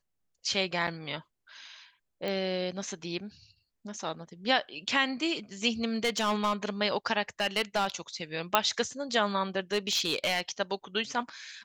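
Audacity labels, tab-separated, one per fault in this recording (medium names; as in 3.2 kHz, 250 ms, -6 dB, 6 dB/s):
0.870000	0.880000	dropout 5.6 ms
2.280000	2.280000	pop -21 dBFS
6.040000	6.530000	clipped -23.5 dBFS
7.400000	7.900000	clipped -22.5 dBFS
8.550000	8.550000	pop -6 dBFS
9.720000	10.410000	clipped -22.5 dBFS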